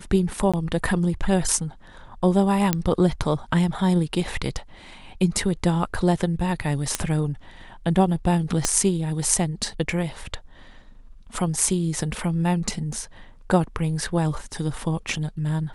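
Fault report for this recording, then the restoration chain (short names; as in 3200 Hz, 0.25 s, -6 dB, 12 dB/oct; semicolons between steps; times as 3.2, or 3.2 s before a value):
0.52–0.54 gap 16 ms
2.73 pop -5 dBFS
6.95 pop -6 dBFS
8.65 pop -5 dBFS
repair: de-click; interpolate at 0.52, 16 ms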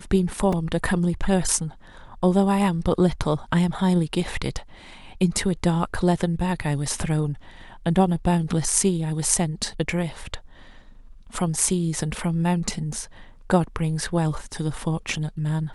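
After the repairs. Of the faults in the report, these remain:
8.65 pop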